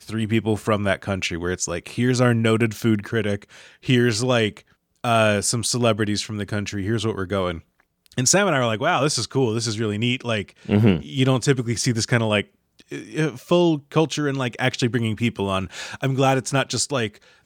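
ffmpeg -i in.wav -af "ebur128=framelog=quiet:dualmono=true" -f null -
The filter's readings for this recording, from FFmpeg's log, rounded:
Integrated loudness:
  I:         -18.7 LUFS
  Threshold: -29.0 LUFS
Loudness range:
  LRA:         1.5 LU
  Threshold: -38.9 LUFS
  LRA low:   -19.7 LUFS
  LRA high:  -18.2 LUFS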